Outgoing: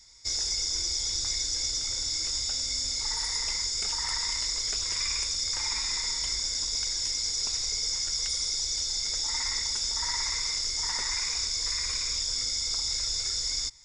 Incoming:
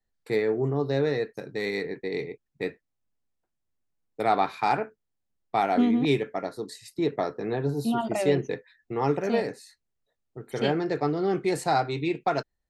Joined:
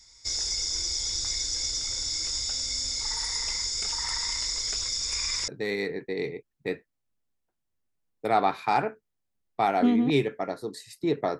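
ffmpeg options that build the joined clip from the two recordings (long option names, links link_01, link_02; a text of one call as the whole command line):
ffmpeg -i cue0.wav -i cue1.wav -filter_complex "[0:a]apad=whole_dur=11.39,atrim=end=11.39,asplit=2[link_01][link_02];[link_01]atrim=end=4.882[link_03];[link_02]atrim=start=4.878:end=5.482,asetpts=PTS-STARTPTS,areverse[link_04];[1:a]atrim=start=1.428:end=7.34[link_05];[link_03][link_04]acrossfade=duration=0.004:curve1=hsin:curve2=hsin[link_06];[link_06][link_05]acrossfade=duration=0.004:curve1=hsin:curve2=hsin" out.wav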